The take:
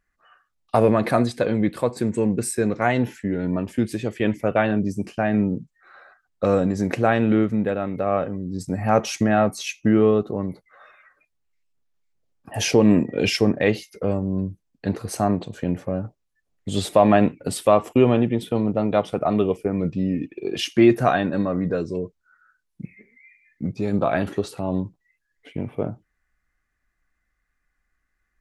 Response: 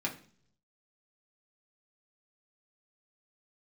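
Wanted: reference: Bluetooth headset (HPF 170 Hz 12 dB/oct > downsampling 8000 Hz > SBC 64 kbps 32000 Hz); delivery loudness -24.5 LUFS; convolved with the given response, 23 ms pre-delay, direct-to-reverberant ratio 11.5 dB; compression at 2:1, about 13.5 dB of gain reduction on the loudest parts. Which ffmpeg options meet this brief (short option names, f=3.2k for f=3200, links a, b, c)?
-filter_complex "[0:a]acompressor=threshold=-36dB:ratio=2,asplit=2[a][b];[1:a]atrim=start_sample=2205,adelay=23[c];[b][c]afir=irnorm=-1:irlink=0,volume=-16dB[d];[a][d]amix=inputs=2:normalize=0,highpass=170,aresample=8000,aresample=44100,volume=9.5dB" -ar 32000 -c:a sbc -b:a 64k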